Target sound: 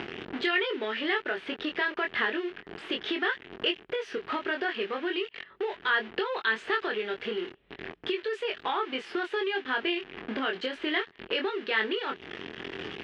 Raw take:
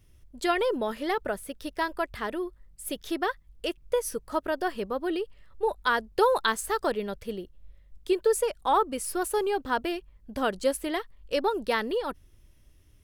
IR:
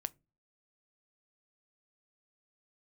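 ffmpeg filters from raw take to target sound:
-filter_complex "[0:a]aeval=exprs='val(0)+0.5*0.0158*sgn(val(0))':c=same,asplit=2[s0][s1];[s1]acompressor=mode=upward:threshold=0.0501:ratio=2.5,volume=1.33[s2];[s0][s2]amix=inputs=2:normalize=0,alimiter=limit=0.282:level=0:latency=1:release=70,highpass=300,equalizer=f=390:t=q:w=4:g=8,equalizer=f=560:t=q:w=4:g=-7,equalizer=f=1000:t=q:w=4:g=-3,equalizer=f=1700:t=q:w=4:g=5,equalizer=f=3000:t=q:w=4:g=4,lowpass=f=3200:w=0.5412,lowpass=f=3200:w=1.3066,asplit=2[s3][s4];[s4]adelay=23,volume=0.668[s5];[s3][s5]amix=inputs=2:normalize=0,acrossover=split=1700[s6][s7];[s6]acompressor=threshold=0.0398:ratio=6[s8];[s8][s7]amix=inputs=2:normalize=0,volume=0.75"

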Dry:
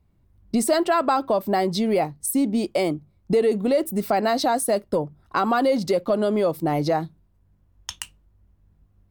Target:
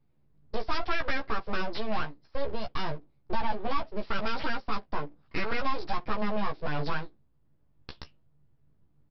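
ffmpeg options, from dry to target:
-filter_complex "[0:a]aresample=11025,aeval=exprs='abs(val(0))':c=same,aresample=44100,asplit=2[s0][s1];[s1]adelay=14,volume=0.668[s2];[s0][s2]amix=inputs=2:normalize=0,volume=0.422"

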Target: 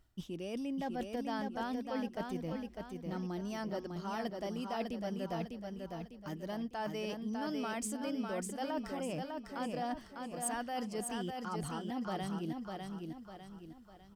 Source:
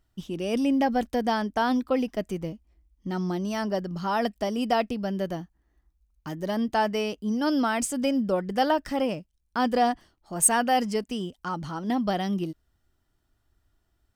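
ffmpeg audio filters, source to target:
-af "areverse,acompressor=threshold=0.01:ratio=5,areverse,aecho=1:1:601|1202|1803|2404|3005:0.596|0.25|0.105|0.0441|0.0185,volume=1.19"

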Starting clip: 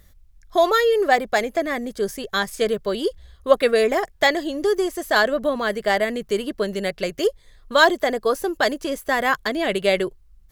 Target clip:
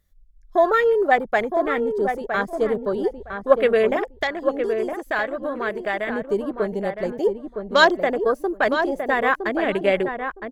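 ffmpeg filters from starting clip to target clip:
-filter_complex "[0:a]afwtdn=0.0447,asettb=1/sr,asplit=3[s0][s1][s2];[s0]atrim=end=3.964[s3];[s1]atrim=start=3.96:end=6.09,asetpts=PTS-STARTPTS,afade=t=in:d=0.004:c=qsin,afade=t=out:st=2.126:d=0.004:c=qsin,acrossover=split=970|2000[s4][s5][s6];[s4]acompressor=threshold=0.0398:ratio=4[s7];[s5]acompressor=threshold=0.0447:ratio=4[s8];[s6]acompressor=threshold=0.0224:ratio=4[s9];[s7][s8][s9]amix=inputs=3:normalize=0[s10];[s2]atrim=start=6.086[s11];[s3][s10]acrossfade=d=0.004:c1=hsin:c2=qsin[s12];[s12][s11]acrossfade=d=0.004:c1=qsin:c2=hsin,asplit=2[s13][s14];[s14]adelay=963,lowpass=f=1600:p=1,volume=0.501,asplit=2[s15][s16];[s16]adelay=963,lowpass=f=1600:p=1,volume=0.2,asplit=2[s17][s18];[s18]adelay=963,lowpass=f=1600:p=1,volume=0.2[s19];[s13][s15][s17][s19]amix=inputs=4:normalize=0"

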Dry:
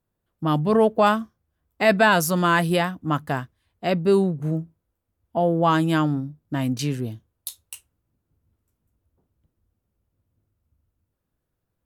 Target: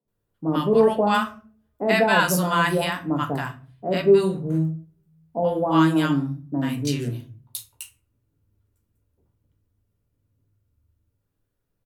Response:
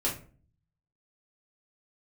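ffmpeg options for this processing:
-filter_complex "[0:a]acrossover=split=150|830[s0][s1][s2];[s0]adelay=50[s3];[s2]adelay=80[s4];[s3][s1][s4]amix=inputs=3:normalize=0,asplit=2[s5][s6];[1:a]atrim=start_sample=2205[s7];[s6][s7]afir=irnorm=-1:irlink=0,volume=0.398[s8];[s5][s8]amix=inputs=2:normalize=0,volume=0.708"

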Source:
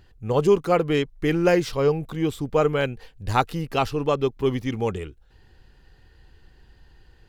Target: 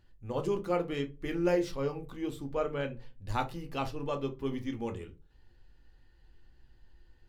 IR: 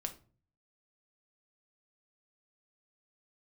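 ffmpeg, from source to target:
-filter_complex "[0:a]asettb=1/sr,asplit=3[s0][s1][s2];[s0]atrim=end=2.544[s3];[s1]atrim=start=2.54:end=3.24,asetpts=PTS-STARTPTS,afade=t=in:d=0.004:c=qsin,afade=t=out:st=0.696:d=0.004:c=qsin,highshelf=f=8100:g=-11[s4];[s2]atrim=start=3.236[s5];[s3][s4]acrossfade=d=0.004:c1=hsin:c2=qsin[s6];[s6][s5]acrossfade=d=0.004:c1=qsin:c2=hsin[s7];[1:a]atrim=start_sample=2205,asetrate=70560,aresample=44100[s8];[s7][s8]afir=irnorm=-1:irlink=0,volume=0.473"

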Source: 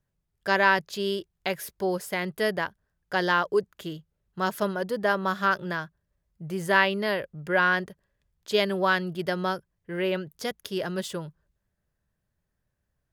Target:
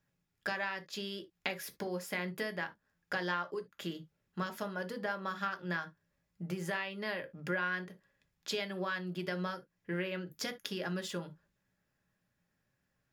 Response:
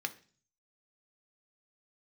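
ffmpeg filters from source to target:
-filter_complex "[0:a]acompressor=threshold=0.0141:ratio=6[s0];[1:a]atrim=start_sample=2205,atrim=end_sample=3528[s1];[s0][s1]afir=irnorm=-1:irlink=0,volume=1.26"

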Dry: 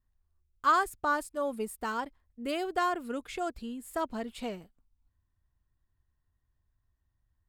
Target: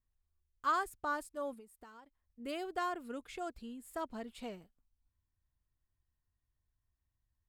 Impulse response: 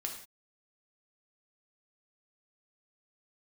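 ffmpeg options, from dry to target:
-filter_complex "[0:a]asettb=1/sr,asplit=3[s0][s1][s2];[s0]atrim=end=1.534[s3];[s1]atrim=start=1.53:end=2.4,asetpts=PTS-STARTPTS,afade=t=in:d=0.004:c=qsin,afade=t=out:st=0.866:d=0.004:c=qsin,acompressor=threshold=0.00562:ratio=16[s4];[s2]atrim=start=2.396[s5];[s3][s4]acrossfade=d=0.004:c1=hsin:c2=qsin[s6];[s6][s5]acrossfade=d=0.004:c1=qsin:c2=hsin,volume=0.422"

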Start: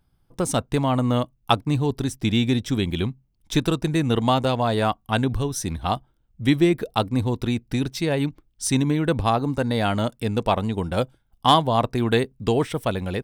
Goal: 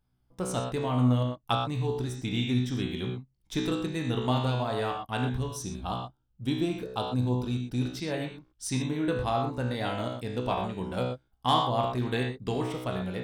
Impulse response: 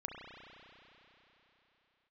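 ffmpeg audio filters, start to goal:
-filter_complex "[0:a]asettb=1/sr,asplit=3[s0][s1][s2];[s0]atrim=end=5.494[s3];[s1]atrim=start=5.49:end=7.8,asetpts=PTS-STARTPTS,afade=t=in:d=0.004:c=qsin,afade=t=out:st=2.306:d=0.004:c=qsin,equalizer=f=2000:w=4.5:g=-13.5[s4];[s2]atrim=start=7.796[s5];[s3][s4]acrossfade=d=0.004:c1=hsin:c2=qsin[s6];[s6][s5]acrossfade=d=0.004:c1=qsin:c2=hsin[s7];[1:a]atrim=start_sample=2205,afade=t=out:st=0.31:d=0.01,atrim=end_sample=14112,asetrate=88200,aresample=44100[s8];[s7][s8]afir=irnorm=-1:irlink=0"

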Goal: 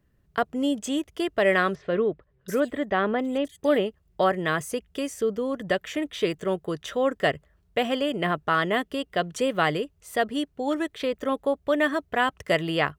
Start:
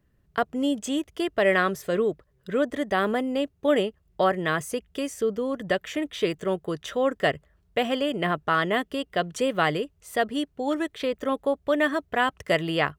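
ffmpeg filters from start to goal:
-filter_complex "[0:a]asettb=1/sr,asplit=3[s0][s1][s2];[s0]atrim=end=1.754[s3];[s1]atrim=start=1.75:end=3.86,asetpts=PTS-STARTPTS,afade=t=in:d=0.004:c=qsin,afade=t=out:st=2.106:d=0.004:c=qsin,acrossover=split=3900[s4][s5];[s5]adelay=730[s6];[s4][s6]amix=inputs=2:normalize=0,atrim=end_sample=93051[s7];[s2]atrim=start=3.856[s8];[s3][s7]acrossfade=d=0.004:c1=hsin:c2=qsin[s9];[s9][s8]acrossfade=d=0.004:c1=qsin:c2=hsin"

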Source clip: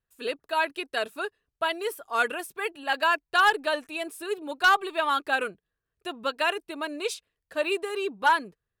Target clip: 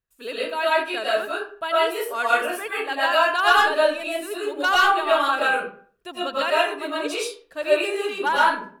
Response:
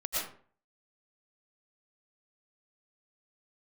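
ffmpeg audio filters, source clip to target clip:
-filter_complex "[1:a]atrim=start_sample=2205[s0];[0:a][s0]afir=irnorm=-1:irlink=0"

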